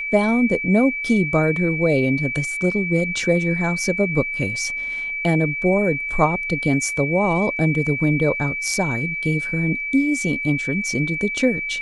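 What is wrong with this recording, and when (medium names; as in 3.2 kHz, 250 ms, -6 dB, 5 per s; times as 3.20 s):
whine 2.3 kHz -24 dBFS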